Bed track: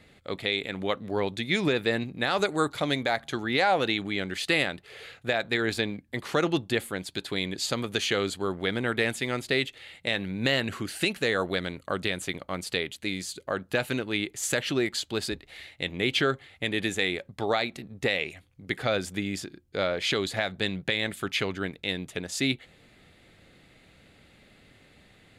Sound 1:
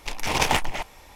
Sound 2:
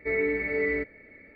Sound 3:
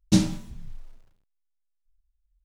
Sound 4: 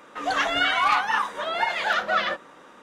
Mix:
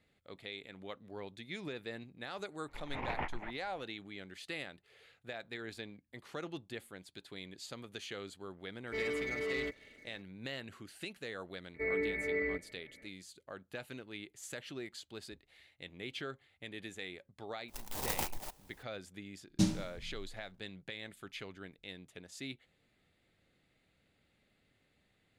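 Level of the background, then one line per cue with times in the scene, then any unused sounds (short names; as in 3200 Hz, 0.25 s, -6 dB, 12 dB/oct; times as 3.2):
bed track -17.5 dB
2.68 add 1 -14.5 dB + Chebyshev low-pass 2100 Hz, order 3
8.87 add 2 -14 dB + sample leveller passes 2
11.74 add 2 -7.5 dB
17.68 add 1 -14.5 dB + clock jitter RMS 0.15 ms
19.47 add 3 -10 dB
not used: 4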